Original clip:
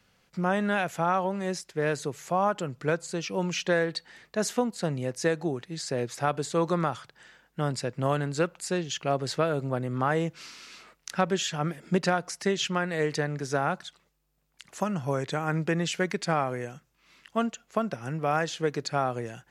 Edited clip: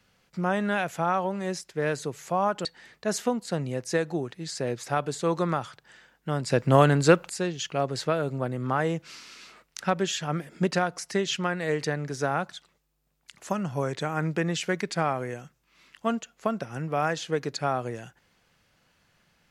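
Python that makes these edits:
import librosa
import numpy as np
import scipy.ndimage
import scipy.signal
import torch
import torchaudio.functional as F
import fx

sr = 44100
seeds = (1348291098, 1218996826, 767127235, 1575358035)

y = fx.edit(x, sr, fx.cut(start_s=2.65, length_s=1.31),
    fx.clip_gain(start_s=7.81, length_s=0.8, db=8.5), tone=tone)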